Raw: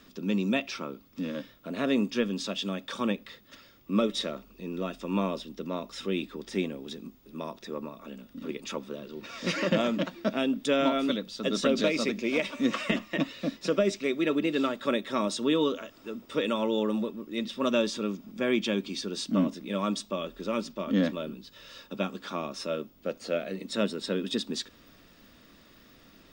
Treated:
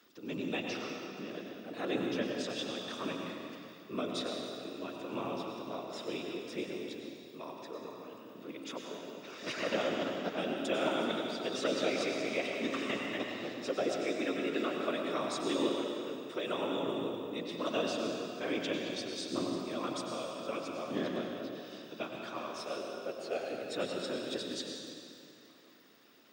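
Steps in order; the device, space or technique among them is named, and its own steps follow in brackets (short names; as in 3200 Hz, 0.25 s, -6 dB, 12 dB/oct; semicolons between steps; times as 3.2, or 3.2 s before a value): whispering ghost (whisperiser; HPF 280 Hz 12 dB/oct; reverb RT60 2.5 s, pre-delay 88 ms, DRR 0.5 dB); gain -7.5 dB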